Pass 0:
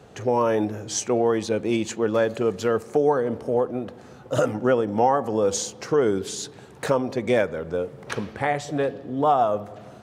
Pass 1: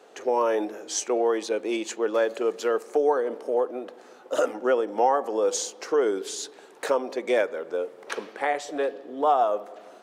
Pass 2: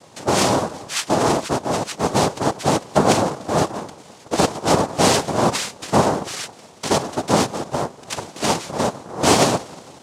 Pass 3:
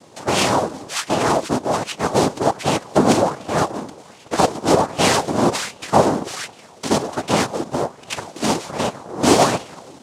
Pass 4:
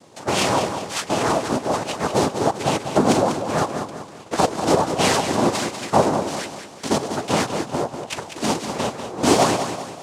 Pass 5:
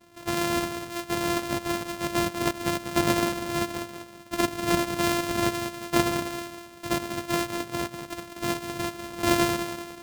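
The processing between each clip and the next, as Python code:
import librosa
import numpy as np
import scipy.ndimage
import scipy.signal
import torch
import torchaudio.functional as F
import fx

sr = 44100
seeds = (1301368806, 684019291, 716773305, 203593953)

y1 = scipy.signal.sosfilt(scipy.signal.butter(4, 320.0, 'highpass', fs=sr, output='sos'), x)
y1 = y1 * 10.0 ** (-1.5 / 20.0)
y2 = fx.noise_vocoder(y1, sr, seeds[0], bands=2)
y2 = y2 * 10.0 ** (5.5 / 20.0)
y3 = fx.bell_lfo(y2, sr, hz=1.3, low_hz=240.0, high_hz=2900.0, db=8)
y3 = y3 * 10.0 ** (-1.5 / 20.0)
y4 = fx.echo_feedback(y3, sr, ms=194, feedback_pct=43, wet_db=-8.5)
y4 = y4 * 10.0 ** (-2.5 / 20.0)
y5 = np.r_[np.sort(y4[:len(y4) // 128 * 128].reshape(-1, 128), axis=1).ravel(), y4[len(y4) // 128 * 128:]]
y5 = y5 * 10.0 ** (-6.5 / 20.0)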